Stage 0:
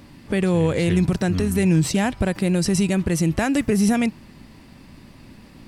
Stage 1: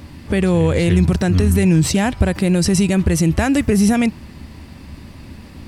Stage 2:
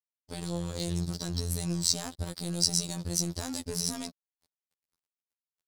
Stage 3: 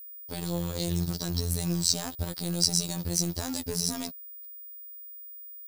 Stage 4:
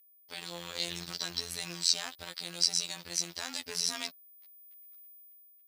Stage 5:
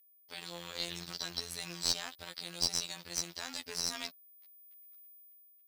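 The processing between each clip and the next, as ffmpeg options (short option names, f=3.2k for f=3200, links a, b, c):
-filter_complex "[0:a]equalizer=f=76:w=3.3:g=13.5,asplit=2[a][b];[b]alimiter=limit=-15dB:level=0:latency=1:release=85,volume=2dB[c];[a][c]amix=inputs=2:normalize=0,volume=-1dB"
-af "highshelf=f=3.3k:t=q:w=3:g=11.5,aeval=exprs='sgn(val(0))*max(abs(val(0))-0.0708,0)':c=same,afftfilt=real='hypot(re,im)*cos(PI*b)':imag='0':win_size=2048:overlap=0.75,volume=-14.5dB"
-filter_complex "[0:a]asplit=2[a][b];[b]acontrast=61,volume=2dB[c];[a][c]amix=inputs=2:normalize=0,acrusher=bits=6:mode=log:mix=0:aa=0.000001,aeval=exprs='val(0)+0.0224*sin(2*PI*15000*n/s)':c=same,volume=-8.5dB"
-af "dynaudnorm=f=240:g=7:m=14.5dB,bandpass=f=2.5k:t=q:w=1.2:csg=0,volume=4dB"
-af "aeval=exprs='(tanh(5.62*val(0)+0.45)-tanh(0.45))/5.62':c=same,volume=-1dB"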